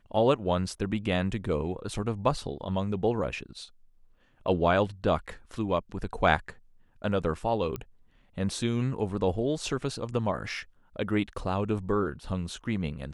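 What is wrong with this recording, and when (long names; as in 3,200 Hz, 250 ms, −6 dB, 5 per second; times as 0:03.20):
0:07.76: click −20 dBFS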